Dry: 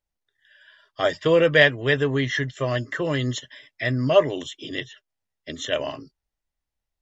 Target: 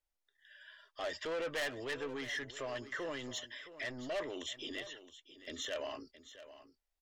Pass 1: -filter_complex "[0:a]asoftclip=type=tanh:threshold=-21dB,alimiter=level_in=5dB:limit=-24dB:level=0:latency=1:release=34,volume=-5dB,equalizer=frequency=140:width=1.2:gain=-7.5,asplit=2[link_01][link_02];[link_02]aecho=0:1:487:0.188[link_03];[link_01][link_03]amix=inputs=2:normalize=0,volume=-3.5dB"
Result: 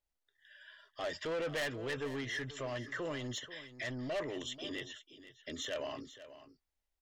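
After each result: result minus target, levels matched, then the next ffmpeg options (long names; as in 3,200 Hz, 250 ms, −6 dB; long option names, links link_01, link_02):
125 Hz band +8.5 dB; echo 181 ms early
-filter_complex "[0:a]asoftclip=type=tanh:threshold=-21dB,alimiter=level_in=5dB:limit=-24dB:level=0:latency=1:release=34,volume=-5dB,equalizer=frequency=140:width=1.2:gain=-18,asplit=2[link_01][link_02];[link_02]aecho=0:1:487:0.188[link_03];[link_01][link_03]amix=inputs=2:normalize=0,volume=-3.5dB"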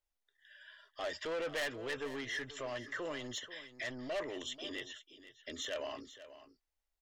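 echo 181 ms early
-filter_complex "[0:a]asoftclip=type=tanh:threshold=-21dB,alimiter=level_in=5dB:limit=-24dB:level=0:latency=1:release=34,volume=-5dB,equalizer=frequency=140:width=1.2:gain=-18,asplit=2[link_01][link_02];[link_02]aecho=0:1:668:0.188[link_03];[link_01][link_03]amix=inputs=2:normalize=0,volume=-3.5dB"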